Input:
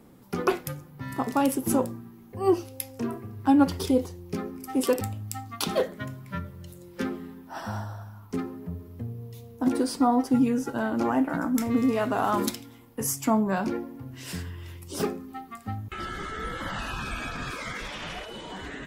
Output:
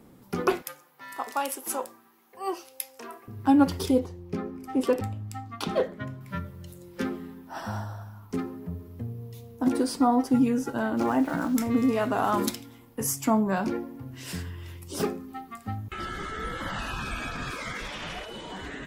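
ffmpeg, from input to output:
-filter_complex "[0:a]asettb=1/sr,asplit=3[a][b][c];[a]atrim=end=0.624[d];[b]atrim=start=0.62:end=3.28,asetpts=PTS-STARTPTS,afade=t=in:d=0.004:c=qsin,afade=t=out:st=2.656:d=0.004:c=qsin,highpass=720[e];[c]atrim=start=3.276[f];[d][e]acrossfade=d=0.004:c1=hsin:c2=qsin[g];[g][f]acrossfade=d=0.004:c1=qsin:c2=hsin,asettb=1/sr,asplit=3[h][i][j];[h]atrim=end=3.994[k];[i]atrim=start=3.99:end=6.21,asetpts=PTS-STARTPTS,afade=t=in:d=0.004:c=qsin,afade=t=out:st=2.216:d=0.004:c=qsin,lowpass=f=2.4k:p=1[l];[j]atrim=start=6.206[m];[k][l]acrossfade=d=0.004:c1=hsin:c2=qsin[n];[n][m]acrossfade=d=0.004:c1=qsin:c2=hsin,asettb=1/sr,asplit=3[o][p][q];[o]atrim=end=10.974[r];[p]atrim=start=10.97:end=11.59,asetpts=PTS-STARTPTS,afade=t=in:d=0.004:c=qsin,afade=t=out:st=0.616:d=0.004:c=qsin,aeval=exprs='val(0)*gte(abs(val(0)),0.00944)':c=same[s];[q]atrim=start=11.586[t];[r][s]acrossfade=d=0.004:c1=hsin:c2=qsin[u];[u][t]acrossfade=d=0.004:c1=qsin:c2=hsin"

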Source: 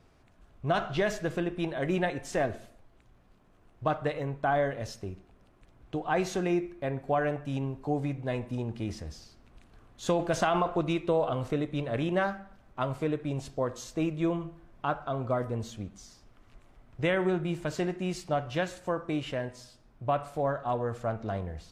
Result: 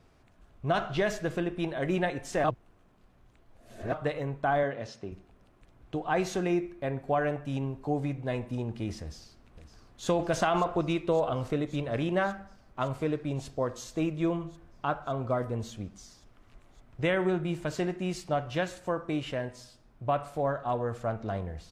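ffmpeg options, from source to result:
-filter_complex "[0:a]asettb=1/sr,asplit=3[a][b][c];[a]atrim=end=4.634[d];[b]atrim=start=4.63:end=5.12,asetpts=PTS-STARTPTS,afade=t=in:d=0.004:c=qsin,afade=t=out:st=0.486:d=0.004:c=qsin,highpass=140,lowpass=4.9k[e];[c]atrim=start=5.116[f];[d][e]acrossfade=d=0.004:c1=hsin:c2=qsin[g];[g][f]acrossfade=d=0.004:c1=qsin:c2=hsin,asplit=2[h][i];[i]afade=t=in:st=9.01:d=0.01,afade=t=out:st=10.08:d=0.01,aecho=0:1:560|1120|1680|2240|2800|3360|3920|4480|5040|5600|6160|6720:0.237137|0.201567|0.171332|0.145632|0.123787|0.105219|0.0894362|0.0760208|0.0646177|0.054925|0.0466863|0.0396833[j];[h][j]amix=inputs=2:normalize=0,asplit=3[k][l][m];[k]atrim=end=2.442[n];[l]atrim=start=2.438:end=3.922,asetpts=PTS-STARTPTS,areverse[o];[m]atrim=start=3.918[p];[n][o]acrossfade=d=0.004:c1=hsin:c2=hsin[q];[q][p]acrossfade=d=0.004:c1=hsin:c2=hsin"

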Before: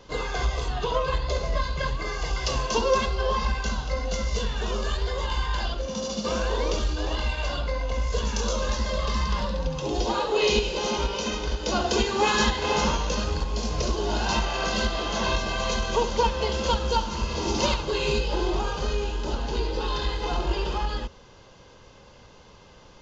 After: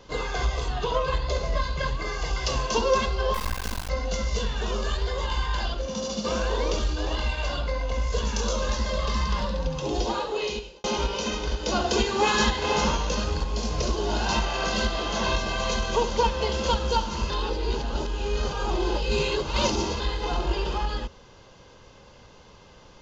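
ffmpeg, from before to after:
-filter_complex "[0:a]asettb=1/sr,asplit=3[a][b][c];[a]atrim=end=3.344[d];[b]atrim=start=3.34:end=3.89,asetpts=PTS-STARTPTS,afade=t=in:d=0.004:c=qsin,afade=t=out:st=0.546:d=0.004:c=qsin,acrusher=bits=3:dc=4:mix=0:aa=0.000001[e];[c]atrim=start=3.886[f];[d][e]acrossfade=d=0.004:c1=hsin:c2=qsin[g];[g][f]acrossfade=d=0.004:c1=qsin:c2=hsin,asplit=4[h][i][j][k];[h]atrim=end=10.84,asetpts=PTS-STARTPTS,afade=t=out:st=9.97:d=0.87[l];[i]atrim=start=10.84:end=17.302,asetpts=PTS-STARTPTS,afade=t=in:d=0.004:c=hsin[m];[j]atrim=start=17.298:end=20.002,asetpts=PTS-STARTPTS,areverse[n];[k]atrim=start=19.998[o];[l][m]concat=n=2:v=0:a=1[p];[p][n]acrossfade=d=0.004:c1=hsin:c2=hsin[q];[q][o]acrossfade=d=0.004:c1=hsin:c2=hsin"

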